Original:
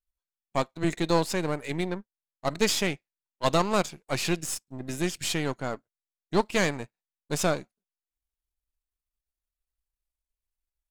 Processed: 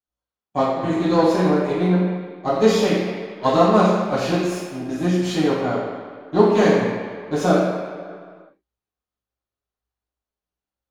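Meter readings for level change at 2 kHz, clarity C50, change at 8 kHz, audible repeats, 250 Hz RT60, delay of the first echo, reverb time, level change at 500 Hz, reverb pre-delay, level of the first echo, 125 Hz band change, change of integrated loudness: +3.5 dB, -0.5 dB, -4.0 dB, none, 1.8 s, none, 1.9 s, +11.0 dB, 3 ms, none, +9.5 dB, +9.0 dB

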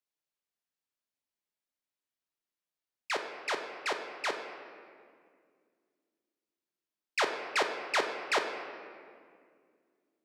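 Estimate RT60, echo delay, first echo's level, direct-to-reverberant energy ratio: 2.1 s, none, none, 3.5 dB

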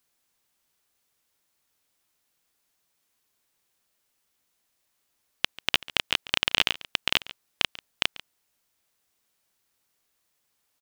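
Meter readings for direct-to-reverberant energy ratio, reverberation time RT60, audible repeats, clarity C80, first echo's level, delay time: none, none, 1, none, -19.0 dB, 0.141 s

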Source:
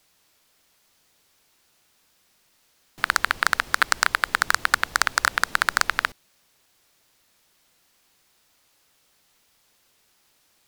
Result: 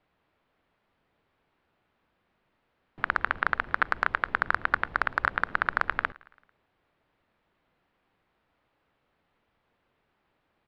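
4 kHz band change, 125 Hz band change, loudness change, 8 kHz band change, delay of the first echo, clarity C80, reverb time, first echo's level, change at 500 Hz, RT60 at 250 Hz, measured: -17.5 dB, 0.0 dB, -6.0 dB, under -35 dB, 0.111 s, none, none, -24.0 dB, -1.5 dB, none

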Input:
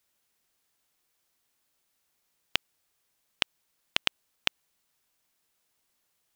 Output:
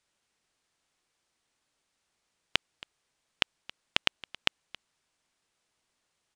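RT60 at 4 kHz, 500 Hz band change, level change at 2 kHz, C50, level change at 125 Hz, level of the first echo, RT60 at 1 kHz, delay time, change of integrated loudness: none, +1.5 dB, +1.0 dB, none, +1.5 dB, -20.0 dB, none, 0.273 s, +0.5 dB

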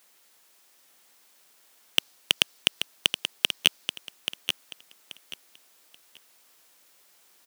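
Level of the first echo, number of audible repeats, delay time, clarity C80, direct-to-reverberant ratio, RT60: -8.0 dB, 3, 0.832 s, none, none, none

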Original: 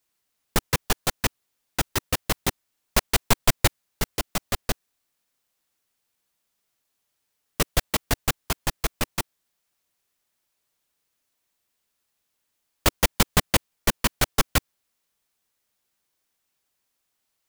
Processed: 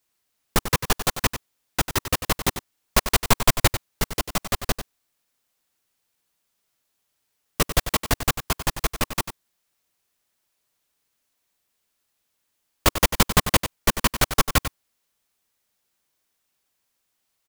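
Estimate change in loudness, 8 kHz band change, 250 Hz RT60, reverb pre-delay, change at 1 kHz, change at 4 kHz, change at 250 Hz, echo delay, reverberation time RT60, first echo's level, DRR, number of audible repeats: +2.0 dB, +2.0 dB, none, none, +3.5 dB, +2.0 dB, +2.0 dB, 95 ms, none, -10.5 dB, none, 1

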